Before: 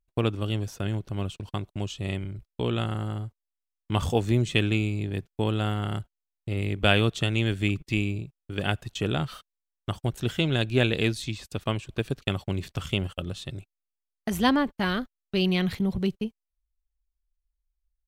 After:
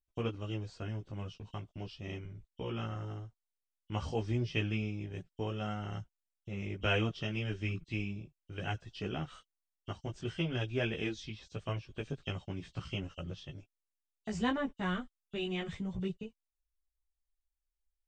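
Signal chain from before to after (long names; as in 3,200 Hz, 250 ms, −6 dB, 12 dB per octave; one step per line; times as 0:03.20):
hearing-aid frequency compression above 2,700 Hz 1.5 to 1
multi-voice chorus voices 6, 0.3 Hz, delay 15 ms, depth 4.1 ms
level −7 dB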